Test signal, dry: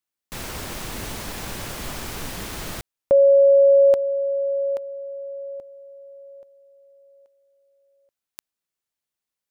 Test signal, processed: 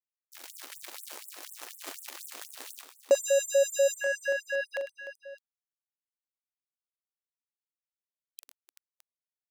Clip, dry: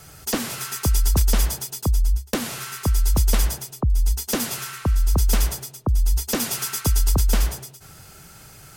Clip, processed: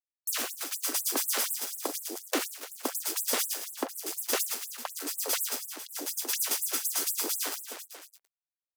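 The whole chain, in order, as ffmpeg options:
ffmpeg -i in.wav -filter_complex "[0:a]bandreject=frequency=60:width_type=h:width=6,bandreject=frequency=120:width_type=h:width=6,bandreject=frequency=180:width_type=h:width=6,acrusher=bits=3:mix=0:aa=0.5,asplit=2[link_01][link_02];[link_02]aecho=0:1:42|102|125|300|384|614:0.316|0.316|0.188|0.15|0.224|0.133[link_03];[link_01][link_03]amix=inputs=2:normalize=0,afftfilt=real='re*gte(b*sr/1024,220*pow(7700/220,0.5+0.5*sin(2*PI*4.1*pts/sr)))':imag='im*gte(b*sr/1024,220*pow(7700/220,0.5+0.5*sin(2*PI*4.1*pts/sr)))':win_size=1024:overlap=0.75,volume=-3.5dB" out.wav

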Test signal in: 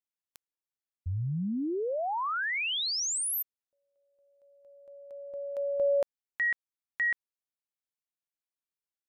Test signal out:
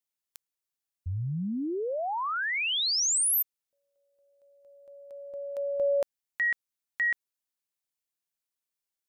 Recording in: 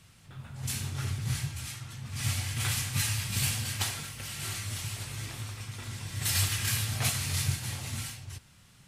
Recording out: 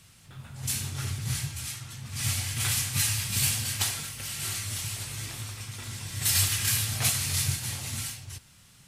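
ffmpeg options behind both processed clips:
ffmpeg -i in.wav -af "highshelf=frequency=3700:gain=6.5" out.wav

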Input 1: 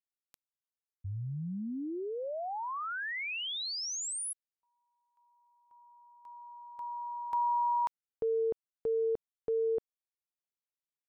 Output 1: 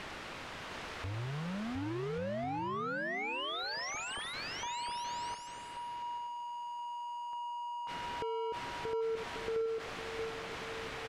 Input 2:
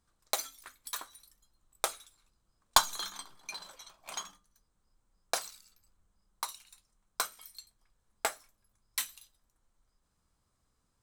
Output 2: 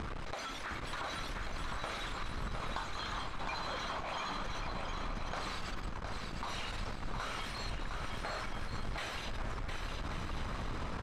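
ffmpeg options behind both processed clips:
ffmpeg -i in.wav -filter_complex "[0:a]aeval=exprs='val(0)+0.5*0.0531*sgn(val(0))':channel_layout=same,lowpass=2300,acompressor=threshold=-44dB:ratio=4:attack=16:release=21:detection=rms,asplit=2[link_01][link_02];[link_02]aecho=0:1:710|1136|1392|1545|1637:0.631|0.398|0.251|0.158|0.1[link_03];[link_01][link_03]amix=inputs=2:normalize=0,volume=1.5dB" out.wav

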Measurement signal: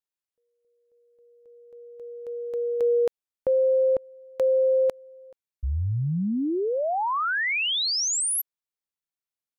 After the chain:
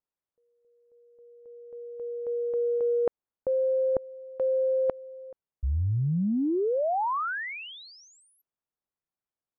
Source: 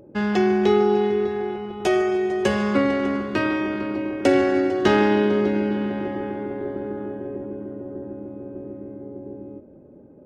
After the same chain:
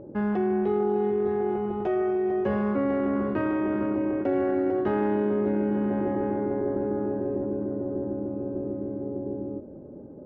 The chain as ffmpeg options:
ffmpeg -i in.wav -af "areverse,acompressor=threshold=-32dB:ratio=6:attack=51:release=27:knee=6:detection=rms,areverse,lowpass=1200,volume=4.5dB" out.wav

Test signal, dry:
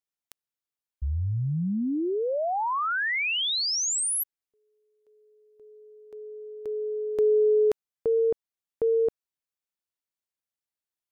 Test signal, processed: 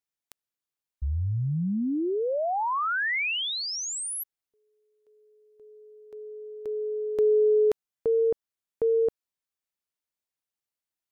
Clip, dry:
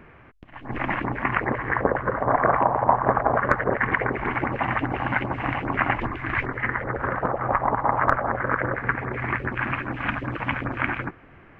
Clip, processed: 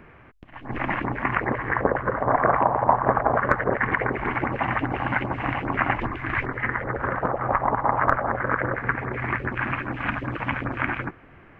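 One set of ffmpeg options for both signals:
ffmpeg -i in.wav -filter_complex "[0:a]acrossover=split=2500[link_01][link_02];[link_02]acompressor=threshold=-32dB:ratio=4:attack=1:release=60[link_03];[link_01][link_03]amix=inputs=2:normalize=0" out.wav

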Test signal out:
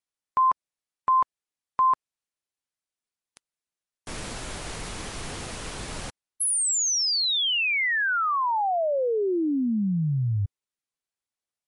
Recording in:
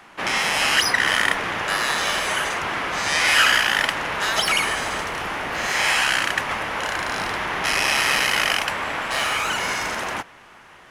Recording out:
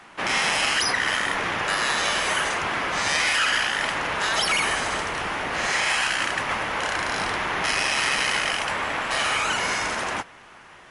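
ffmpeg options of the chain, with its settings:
ffmpeg -i in.wav -af "alimiter=limit=-13dB:level=0:latency=1:release=15" -ar 32000 -c:a libmp3lame -b:a 48k out.mp3

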